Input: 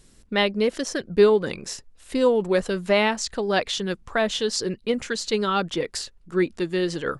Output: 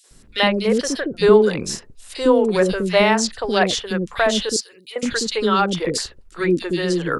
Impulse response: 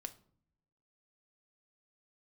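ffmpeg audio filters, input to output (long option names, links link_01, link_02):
-filter_complex "[0:a]asettb=1/sr,asplit=3[link_01][link_02][link_03];[link_01]atrim=end=4.454[link_04];[link_02]atrim=start=4.45:end=4.92,asetpts=PTS-STARTPTS,afade=type=in:duration=0.004:curve=qsin,afade=type=out:start_time=0.466:duration=0.004:curve=qsin,aderivative[link_05];[link_03]atrim=start=4.916[link_06];[link_04][link_05]acrossfade=duration=0.004:curve1=hsin:curve2=qsin[link_07];[link_07][link_06]acrossfade=duration=0.004:curve1=qsin:curve2=hsin,acrossover=split=430|2600[link_08][link_09][link_10];[link_09]adelay=40[link_11];[link_08]adelay=110[link_12];[link_12][link_11][link_10]amix=inputs=3:normalize=0,volume=6.5dB"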